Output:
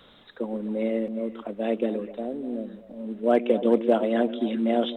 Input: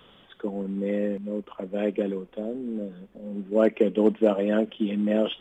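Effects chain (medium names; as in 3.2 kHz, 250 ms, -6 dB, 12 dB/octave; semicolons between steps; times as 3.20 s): repeats whose band climbs or falls 136 ms, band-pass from 270 Hz, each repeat 1.4 oct, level -8.5 dB; speed mistake 44.1 kHz file played as 48 kHz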